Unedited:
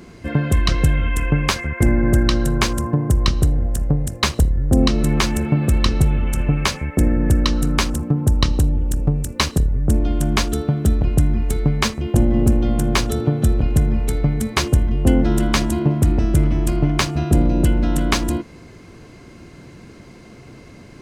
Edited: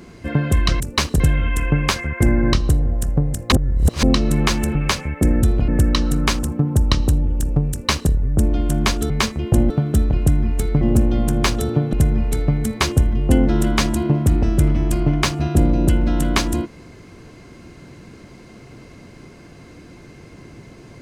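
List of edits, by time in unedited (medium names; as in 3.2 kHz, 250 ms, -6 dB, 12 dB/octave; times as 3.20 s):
2.13–3.26 s: delete
4.25–4.76 s: reverse
5.48–6.51 s: delete
9.22–9.62 s: copy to 0.80 s
11.72–12.32 s: move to 10.61 s
13.44–13.69 s: move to 7.19 s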